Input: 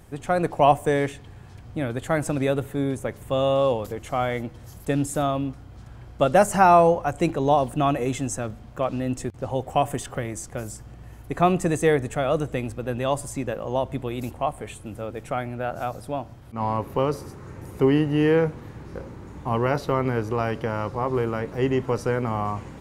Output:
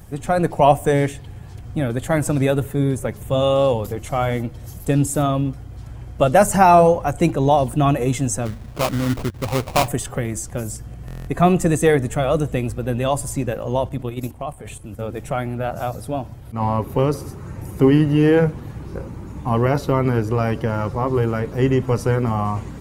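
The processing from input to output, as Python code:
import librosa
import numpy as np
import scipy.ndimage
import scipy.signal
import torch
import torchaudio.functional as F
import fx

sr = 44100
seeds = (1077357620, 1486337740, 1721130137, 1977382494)

y = fx.spec_quant(x, sr, step_db=15)
y = fx.high_shelf(y, sr, hz=7700.0, db=8.5)
y = fx.sample_hold(y, sr, seeds[0], rate_hz=1700.0, jitter_pct=20, at=(8.45, 9.87), fade=0.02)
y = fx.level_steps(y, sr, step_db=10, at=(13.89, 14.99))
y = fx.low_shelf(y, sr, hz=230.0, db=6.5)
y = fx.buffer_glitch(y, sr, at_s=(11.06,), block=1024, repeats=8)
y = y * librosa.db_to_amplitude(3.0)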